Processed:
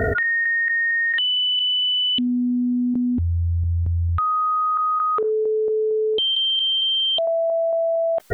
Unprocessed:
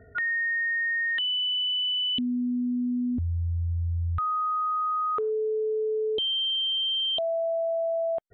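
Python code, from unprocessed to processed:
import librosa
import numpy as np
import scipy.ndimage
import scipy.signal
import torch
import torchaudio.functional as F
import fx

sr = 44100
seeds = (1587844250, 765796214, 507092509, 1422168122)

y = fx.low_shelf(x, sr, hz=380.0, db=-6.5)
y = fx.tremolo_random(y, sr, seeds[0], hz=4.4, depth_pct=90)
y = fx.env_flatten(y, sr, amount_pct=100)
y = y * 10.0 ** (7.0 / 20.0)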